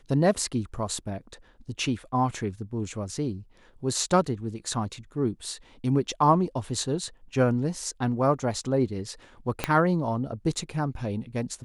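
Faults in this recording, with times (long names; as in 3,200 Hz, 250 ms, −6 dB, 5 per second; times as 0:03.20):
0:09.64: click −9 dBFS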